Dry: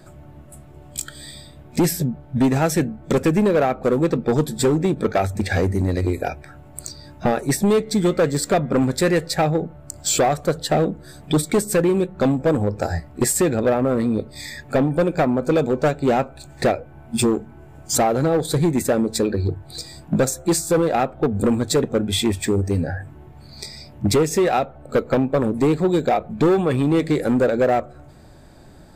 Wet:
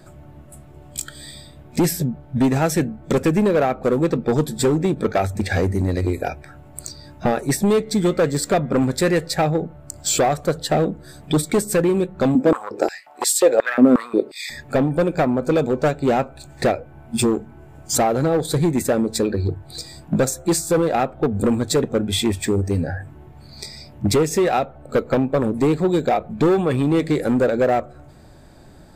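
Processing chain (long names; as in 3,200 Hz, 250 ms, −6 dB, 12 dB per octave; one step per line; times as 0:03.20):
0:12.35–0:14.50: high-pass on a step sequencer 5.6 Hz 240–3,700 Hz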